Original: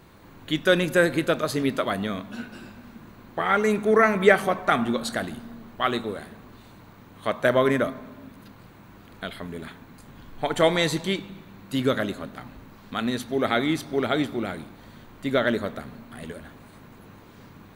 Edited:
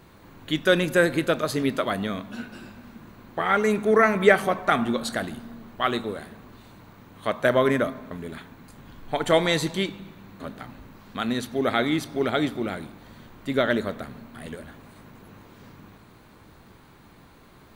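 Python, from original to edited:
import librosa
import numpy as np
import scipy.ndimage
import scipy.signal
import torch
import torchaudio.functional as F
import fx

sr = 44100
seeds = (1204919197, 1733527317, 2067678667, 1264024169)

y = fx.edit(x, sr, fx.cut(start_s=8.11, length_s=1.3),
    fx.cut(start_s=11.7, length_s=0.47), tone=tone)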